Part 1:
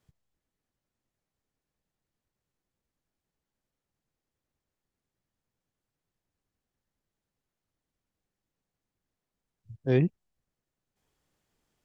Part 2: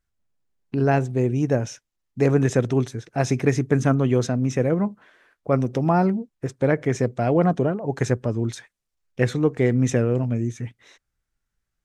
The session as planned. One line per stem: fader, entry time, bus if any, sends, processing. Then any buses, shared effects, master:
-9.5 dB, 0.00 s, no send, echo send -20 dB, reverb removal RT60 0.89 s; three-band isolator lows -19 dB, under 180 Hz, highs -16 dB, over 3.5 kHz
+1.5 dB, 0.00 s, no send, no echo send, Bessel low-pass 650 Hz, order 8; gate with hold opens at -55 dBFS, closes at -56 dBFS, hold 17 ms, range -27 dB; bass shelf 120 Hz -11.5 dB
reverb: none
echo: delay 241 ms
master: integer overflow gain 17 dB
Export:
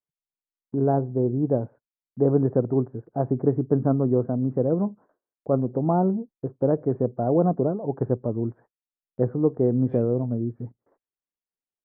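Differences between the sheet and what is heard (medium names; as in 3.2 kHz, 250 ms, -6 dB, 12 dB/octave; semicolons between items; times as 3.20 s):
stem 1 -9.5 dB -> -21.0 dB; master: missing integer overflow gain 17 dB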